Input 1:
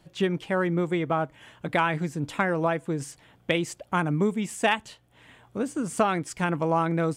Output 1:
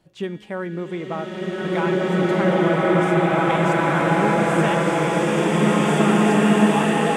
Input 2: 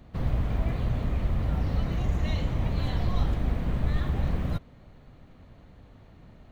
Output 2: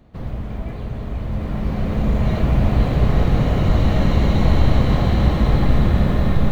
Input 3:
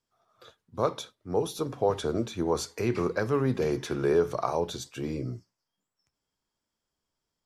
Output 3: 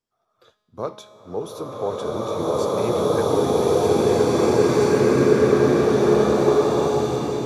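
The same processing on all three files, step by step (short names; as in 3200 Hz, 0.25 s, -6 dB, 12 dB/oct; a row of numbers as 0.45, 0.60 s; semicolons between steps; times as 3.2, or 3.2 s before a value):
bell 410 Hz +3.5 dB 2.4 oct; resonator 210 Hz, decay 1.6 s, mix 70%; bloom reverb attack 2.26 s, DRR -12 dB; match loudness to -19 LUFS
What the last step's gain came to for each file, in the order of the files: +4.5, +8.5, +5.5 dB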